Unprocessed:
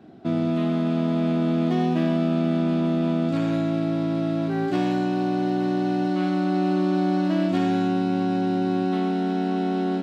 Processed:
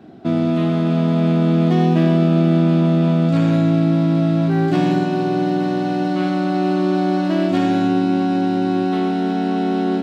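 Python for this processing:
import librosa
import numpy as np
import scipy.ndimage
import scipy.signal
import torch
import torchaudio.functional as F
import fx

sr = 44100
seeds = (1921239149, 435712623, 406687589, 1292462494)

y = fx.echo_bbd(x, sr, ms=321, stages=1024, feedback_pct=63, wet_db=-8.5)
y = y * 10.0 ** (5.5 / 20.0)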